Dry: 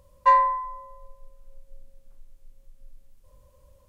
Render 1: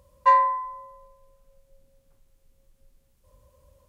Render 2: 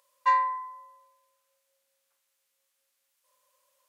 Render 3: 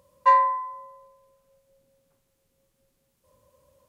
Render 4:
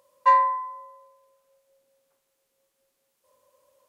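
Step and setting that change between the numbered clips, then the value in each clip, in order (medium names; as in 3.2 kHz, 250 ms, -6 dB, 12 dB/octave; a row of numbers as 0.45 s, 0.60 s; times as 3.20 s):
high-pass, cutoff frequency: 42 Hz, 1.3 kHz, 140 Hz, 460 Hz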